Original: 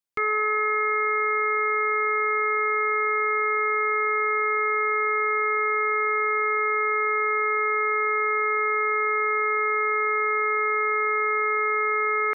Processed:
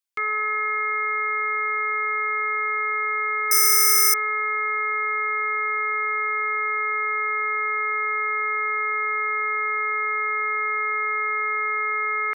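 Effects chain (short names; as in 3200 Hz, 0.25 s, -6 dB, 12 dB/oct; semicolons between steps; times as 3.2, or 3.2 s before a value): tilt shelf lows -7.5 dB, about 700 Hz; 3.51–4.14 careless resampling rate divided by 6×, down filtered, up zero stuff; gain -5 dB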